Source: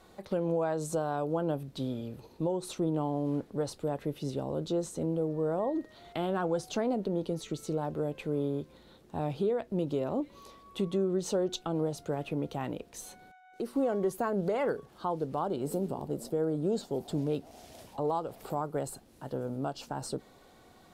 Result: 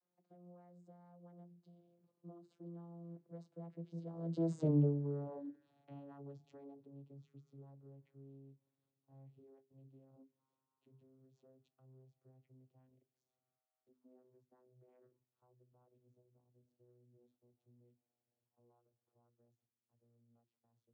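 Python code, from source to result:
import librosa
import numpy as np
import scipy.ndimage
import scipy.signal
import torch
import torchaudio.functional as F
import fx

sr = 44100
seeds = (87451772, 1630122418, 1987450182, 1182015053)

y = fx.vocoder_glide(x, sr, note=52, semitones=-5)
y = fx.doppler_pass(y, sr, speed_mps=25, closest_m=2.6, pass_at_s=4.65)
y = fx.hum_notches(y, sr, base_hz=50, count=8)
y = F.gain(torch.from_numpy(y), 4.0).numpy()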